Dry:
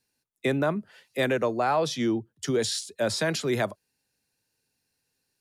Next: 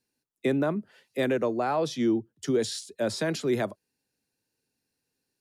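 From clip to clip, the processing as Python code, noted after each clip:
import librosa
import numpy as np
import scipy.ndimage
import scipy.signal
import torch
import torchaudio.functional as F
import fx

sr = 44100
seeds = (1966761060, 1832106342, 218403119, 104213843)

y = fx.peak_eq(x, sr, hz=300.0, db=7.0, octaves=1.7)
y = y * librosa.db_to_amplitude(-5.0)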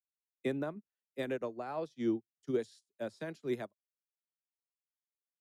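y = fx.upward_expand(x, sr, threshold_db=-46.0, expansion=2.5)
y = y * librosa.db_to_amplitude(-5.5)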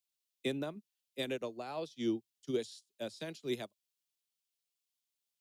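y = fx.high_shelf_res(x, sr, hz=2300.0, db=9.0, q=1.5)
y = y * librosa.db_to_amplitude(-1.5)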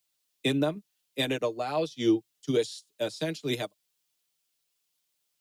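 y = x + 0.6 * np.pad(x, (int(6.6 * sr / 1000.0), 0))[:len(x)]
y = y * librosa.db_to_amplitude(9.0)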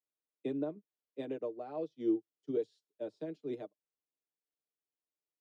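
y = fx.bandpass_q(x, sr, hz=380.0, q=1.3)
y = y * librosa.db_to_amplitude(-6.5)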